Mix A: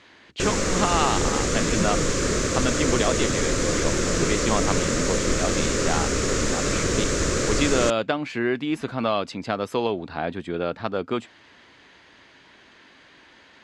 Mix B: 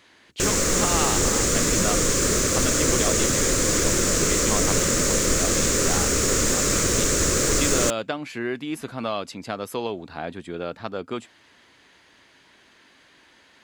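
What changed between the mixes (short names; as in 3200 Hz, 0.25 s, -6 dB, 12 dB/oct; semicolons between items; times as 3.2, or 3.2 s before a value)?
speech -4.5 dB; master: remove air absorption 84 m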